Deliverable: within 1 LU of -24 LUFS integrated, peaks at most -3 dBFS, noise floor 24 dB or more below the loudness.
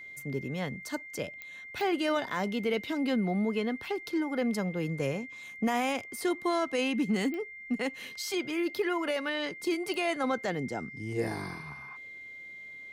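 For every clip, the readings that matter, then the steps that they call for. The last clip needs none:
clicks 4; steady tone 2100 Hz; tone level -43 dBFS; loudness -32.0 LUFS; peak -18.5 dBFS; loudness target -24.0 LUFS
-> de-click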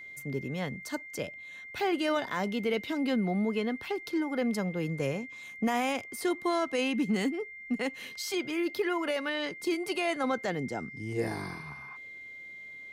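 clicks 0; steady tone 2100 Hz; tone level -43 dBFS
-> notch 2100 Hz, Q 30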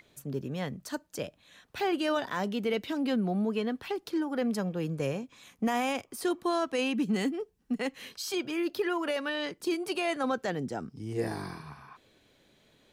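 steady tone none; loudness -32.0 LUFS; peak -19.0 dBFS; loudness target -24.0 LUFS
-> gain +8 dB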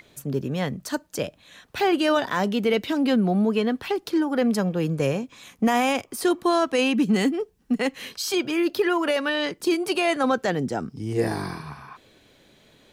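loudness -24.0 LUFS; peak -11.0 dBFS; noise floor -58 dBFS

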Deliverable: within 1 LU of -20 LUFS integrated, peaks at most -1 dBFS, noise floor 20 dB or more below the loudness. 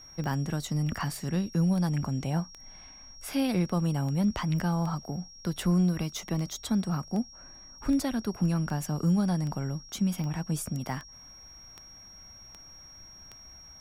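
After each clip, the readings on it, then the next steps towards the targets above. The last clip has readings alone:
clicks 18; steady tone 5600 Hz; tone level -48 dBFS; loudness -30.0 LUFS; peak -16.0 dBFS; loudness target -20.0 LUFS
-> de-click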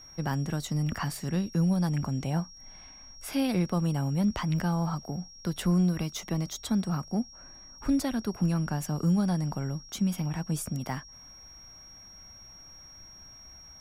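clicks 0; steady tone 5600 Hz; tone level -48 dBFS
-> notch 5600 Hz, Q 30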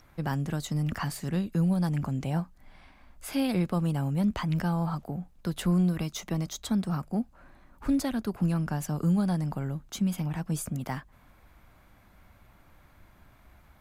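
steady tone none; loudness -30.0 LUFS; peak -16.0 dBFS; loudness target -20.0 LUFS
-> gain +10 dB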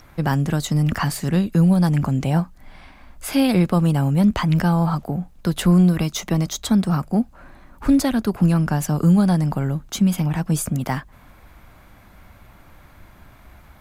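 loudness -20.0 LUFS; peak -6.0 dBFS; noise floor -49 dBFS

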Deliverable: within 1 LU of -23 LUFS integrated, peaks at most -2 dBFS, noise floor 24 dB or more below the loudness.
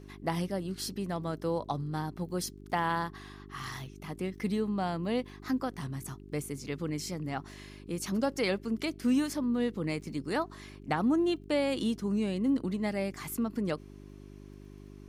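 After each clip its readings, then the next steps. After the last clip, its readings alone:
ticks 19/s; hum 50 Hz; harmonics up to 400 Hz; hum level -48 dBFS; loudness -33.0 LUFS; peak -15.0 dBFS; loudness target -23.0 LUFS
-> de-click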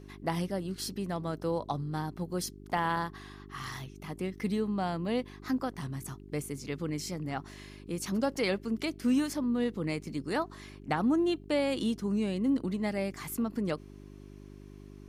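ticks 0/s; hum 50 Hz; harmonics up to 400 Hz; hum level -48 dBFS
-> de-hum 50 Hz, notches 8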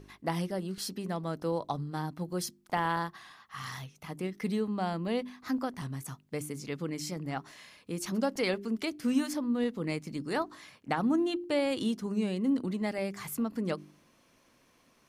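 hum none; loudness -33.5 LUFS; peak -14.5 dBFS; loudness target -23.0 LUFS
-> gain +10.5 dB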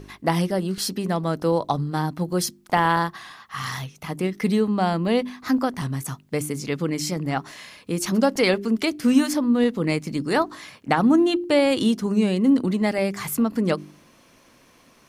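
loudness -23.0 LUFS; peak -4.0 dBFS; noise floor -55 dBFS

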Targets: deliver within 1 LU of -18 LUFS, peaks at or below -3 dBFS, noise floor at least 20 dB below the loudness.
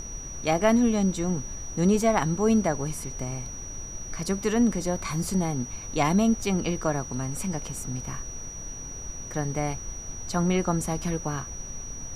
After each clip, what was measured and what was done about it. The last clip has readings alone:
steady tone 5800 Hz; tone level -38 dBFS; noise floor -38 dBFS; noise floor target -48 dBFS; loudness -27.5 LUFS; peak -8.0 dBFS; loudness target -18.0 LUFS
-> notch 5800 Hz, Q 30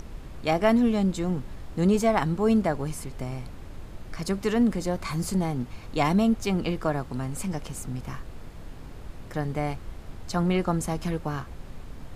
steady tone none; noise floor -42 dBFS; noise floor target -47 dBFS
-> noise print and reduce 6 dB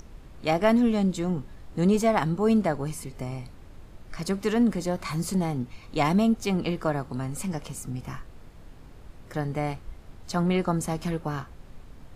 noise floor -48 dBFS; loudness -27.0 LUFS; peak -8.5 dBFS; loudness target -18.0 LUFS
-> gain +9 dB; limiter -3 dBFS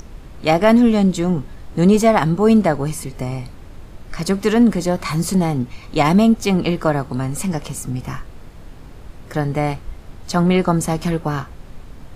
loudness -18.0 LUFS; peak -3.0 dBFS; noise floor -39 dBFS

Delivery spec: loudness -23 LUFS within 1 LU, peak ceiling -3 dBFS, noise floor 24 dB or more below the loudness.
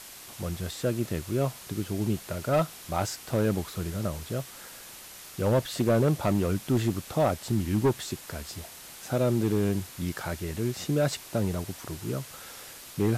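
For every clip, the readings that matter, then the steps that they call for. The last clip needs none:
clipped 0.8%; flat tops at -17.5 dBFS; noise floor -46 dBFS; noise floor target -53 dBFS; loudness -29.0 LUFS; peak -17.5 dBFS; loudness target -23.0 LUFS
-> clip repair -17.5 dBFS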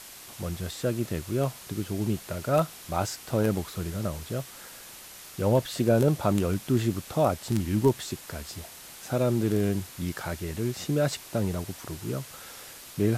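clipped 0.0%; noise floor -46 dBFS; noise floor target -53 dBFS
-> denoiser 7 dB, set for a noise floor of -46 dBFS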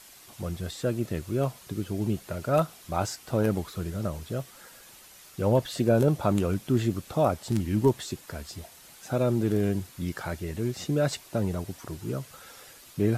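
noise floor -51 dBFS; noise floor target -53 dBFS
-> denoiser 6 dB, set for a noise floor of -51 dBFS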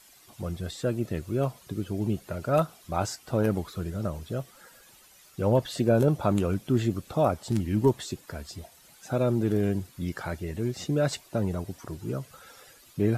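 noise floor -56 dBFS; loudness -28.5 LUFS; peak -9.5 dBFS; loudness target -23.0 LUFS
-> gain +5.5 dB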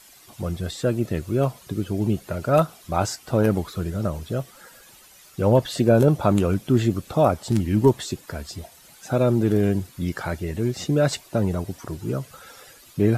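loudness -23.0 LUFS; peak -4.0 dBFS; noise floor -50 dBFS

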